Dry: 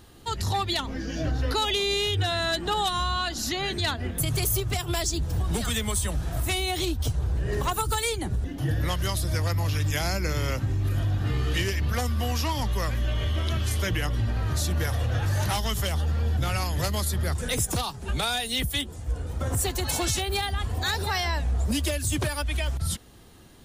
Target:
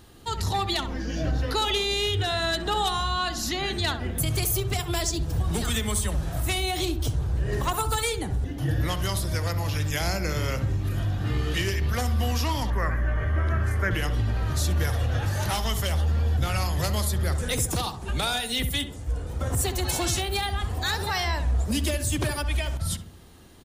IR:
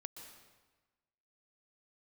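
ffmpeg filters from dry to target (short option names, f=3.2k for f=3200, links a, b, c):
-filter_complex "[0:a]asettb=1/sr,asplit=3[a][b][c];[a]atrim=end=12.704[d];[b]atrim=start=12.7:end=13.91,asetpts=PTS-STARTPTS,afade=t=in:d=0.004:c=qsin,afade=t=out:st=1.206:d=0.004:c=qsin,highshelf=f=2.4k:t=q:w=3:g=-11.5[e];[c]atrim=start=13.906[f];[d][e]acrossfade=d=0.004:c1=hsin:c2=qsin[g];[g][f]acrossfade=d=0.004:c1=qsin:c2=hsin,asplit=2[h][i];[i]adelay=66,lowpass=f=1.5k:p=1,volume=-8.5dB,asplit=2[j][k];[k]adelay=66,lowpass=f=1.5k:p=1,volume=0.51,asplit=2[l][m];[m]adelay=66,lowpass=f=1.5k:p=1,volume=0.51,asplit=2[n][o];[o]adelay=66,lowpass=f=1.5k:p=1,volume=0.51,asplit=2[p][q];[q]adelay=66,lowpass=f=1.5k:p=1,volume=0.51,asplit=2[r][s];[s]adelay=66,lowpass=f=1.5k:p=1,volume=0.51[t];[h][j][l][n][p][r][t]amix=inputs=7:normalize=0"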